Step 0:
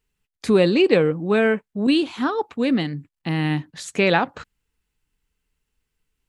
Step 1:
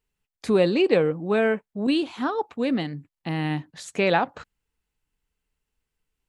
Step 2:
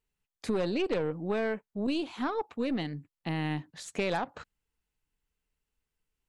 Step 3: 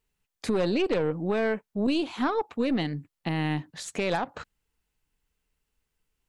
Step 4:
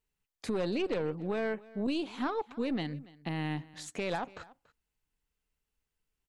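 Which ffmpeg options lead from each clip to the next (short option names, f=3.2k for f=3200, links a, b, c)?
-af "equalizer=f=700:w=1.2:g=4.5,volume=-5dB"
-af "aeval=exprs='0.501*(cos(1*acos(clip(val(0)/0.501,-1,1)))-cos(1*PI/2))+0.0562*(cos(5*acos(clip(val(0)/0.501,-1,1)))-cos(5*PI/2))+0.0501*(cos(6*acos(clip(val(0)/0.501,-1,1)))-cos(6*PI/2))':c=same,acompressor=threshold=-19dB:ratio=3,volume=-8dB"
-af "alimiter=limit=-22dB:level=0:latency=1:release=233,volume=5.5dB"
-af "aecho=1:1:285:0.0891,volume=-6.5dB"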